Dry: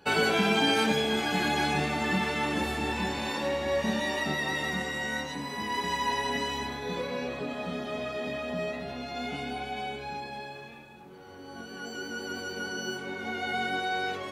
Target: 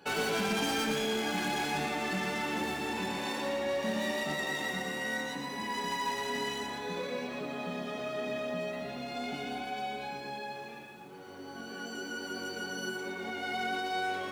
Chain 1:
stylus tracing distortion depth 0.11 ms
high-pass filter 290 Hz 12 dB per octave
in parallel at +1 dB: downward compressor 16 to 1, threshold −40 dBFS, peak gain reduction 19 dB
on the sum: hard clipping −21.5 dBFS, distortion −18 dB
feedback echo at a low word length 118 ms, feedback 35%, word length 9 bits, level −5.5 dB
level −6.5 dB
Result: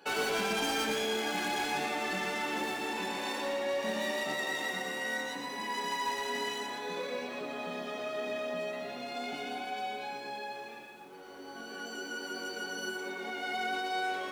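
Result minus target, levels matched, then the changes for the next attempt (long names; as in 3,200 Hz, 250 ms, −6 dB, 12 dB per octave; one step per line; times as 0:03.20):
125 Hz band −7.5 dB
change: high-pass filter 120 Hz 12 dB per octave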